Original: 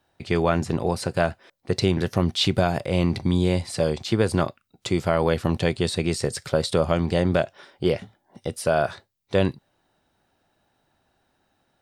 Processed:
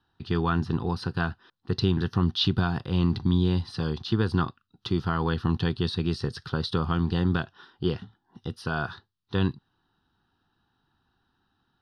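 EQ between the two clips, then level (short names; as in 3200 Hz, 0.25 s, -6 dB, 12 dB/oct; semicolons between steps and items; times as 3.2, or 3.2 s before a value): air absorption 80 m; fixed phaser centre 2200 Hz, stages 6; 0.0 dB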